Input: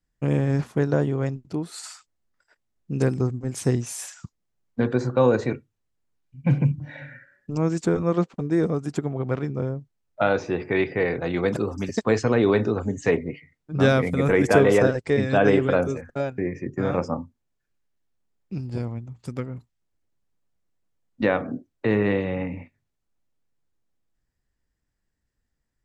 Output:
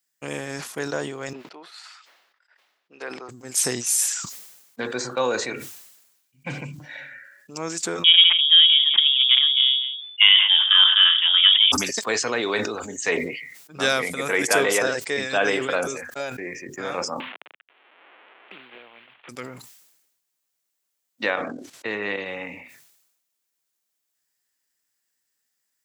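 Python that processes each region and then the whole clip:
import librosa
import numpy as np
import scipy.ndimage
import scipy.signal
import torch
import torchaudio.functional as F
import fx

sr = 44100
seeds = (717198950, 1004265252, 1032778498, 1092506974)

y = fx.chain(x, sr, fx.highpass(hz=560.0, slope=12),
    fx.air_absorb(metres=340.0), at=(1.33, 3.29))
y = fx.chain(y, sr, fx.echo_single(ms=171, db=-18.5),
    fx.freq_invert(carrier_hz=3500), at=(8.04, 11.72))
y = fx.chain(y, sr, fx.cvsd(bps=16000),
    fx.highpass(hz=430.0, slope=12),
    fx.band_squash(depth_pct=100), at=(17.2, 19.29))
y = fx.chain(y, sr, fx.level_steps(step_db=11),
    fx.air_absorb(metres=59.0), at=(21.3, 22.26))
y = fx.highpass(y, sr, hz=230.0, slope=6)
y = fx.tilt_eq(y, sr, slope=4.5)
y = fx.sustainer(y, sr, db_per_s=55.0)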